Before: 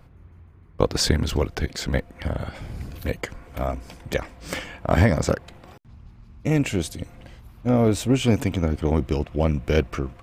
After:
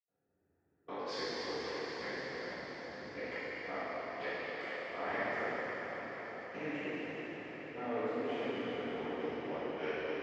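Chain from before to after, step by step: local Wiener filter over 41 samples; recorder AGC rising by 11 dB/s; cabinet simulation 490–4500 Hz, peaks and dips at 600 Hz -4 dB, 1.9 kHz +7 dB, 3.7 kHz -4 dB; echo that smears into a reverb 962 ms, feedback 63%, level -13.5 dB; reverberation RT60 5.3 s, pre-delay 76 ms; trim +9.5 dB

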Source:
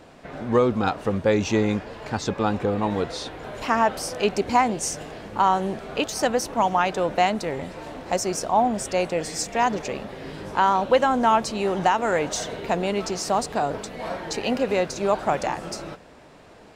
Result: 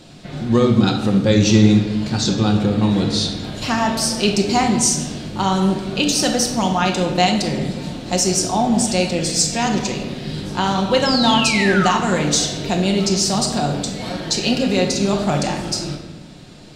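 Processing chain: graphic EQ 125/250/500/1000/2000/4000/8000 Hz +6/+4/-5/-6/-4/+9/+5 dB; painted sound fall, 11.05–11.98 s, 970–5400 Hz -27 dBFS; on a send: reverberation RT60 1.2 s, pre-delay 5 ms, DRR 1.5 dB; on the sum: trim +3.5 dB

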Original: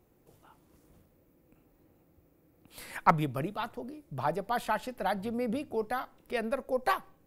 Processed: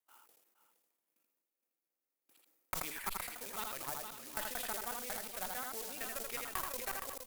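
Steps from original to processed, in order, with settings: slices played last to first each 182 ms, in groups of 3; gate -58 dBFS, range -22 dB; delay 80 ms -4.5 dB; compression 10:1, threshold -34 dBFS, peak gain reduction 16.5 dB; three-band isolator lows -23 dB, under 170 Hz, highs -12 dB, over 2.9 kHz; short-mantissa float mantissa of 2-bit; differentiator; Chebyshev shaper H 8 -19 dB, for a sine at -30 dBFS; on a send: delay 467 ms -11 dB; on the sum: decay stretcher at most 45 dB/s; trim +11 dB

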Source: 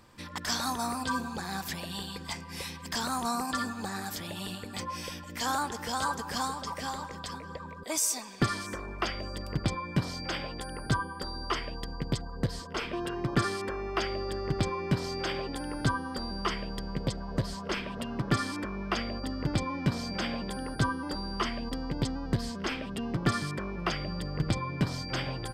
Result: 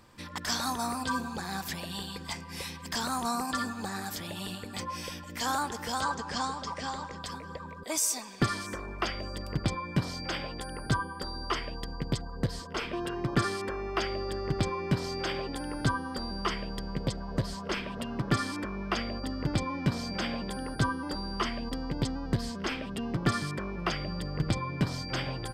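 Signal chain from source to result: 6.01–7.20 s: low-pass 7.5 kHz 24 dB/octave

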